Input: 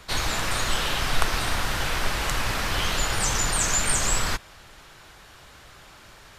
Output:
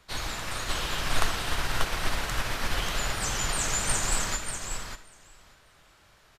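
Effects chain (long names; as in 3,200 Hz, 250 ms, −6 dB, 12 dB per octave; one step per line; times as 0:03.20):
repeating echo 589 ms, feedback 16%, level −4 dB
convolution reverb, pre-delay 25 ms, DRR 9.5 dB
expander for the loud parts 1.5 to 1, over −34 dBFS
level −2.5 dB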